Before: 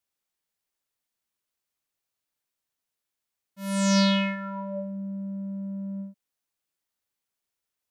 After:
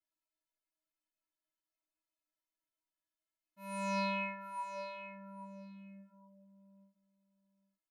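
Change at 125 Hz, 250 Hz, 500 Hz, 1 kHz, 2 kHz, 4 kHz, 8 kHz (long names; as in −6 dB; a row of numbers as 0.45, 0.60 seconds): can't be measured, −18.0 dB, −10.5 dB, −4.5 dB, −8.0 dB, −19.0 dB, −19.5 dB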